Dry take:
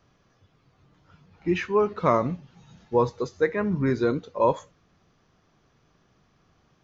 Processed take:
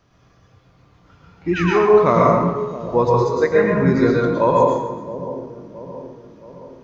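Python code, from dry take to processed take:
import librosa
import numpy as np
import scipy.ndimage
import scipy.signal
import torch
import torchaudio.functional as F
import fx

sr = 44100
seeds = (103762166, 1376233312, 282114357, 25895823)

y = fx.echo_split(x, sr, split_hz=850.0, low_ms=671, high_ms=132, feedback_pct=52, wet_db=-13.0)
y = fx.spec_paint(y, sr, seeds[0], shape='fall', start_s=1.53, length_s=0.26, low_hz=680.0, high_hz=1700.0, level_db=-33.0)
y = fx.rev_plate(y, sr, seeds[1], rt60_s=0.95, hf_ratio=0.55, predelay_ms=95, drr_db=-3.0)
y = y * 10.0 ** (3.5 / 20.0)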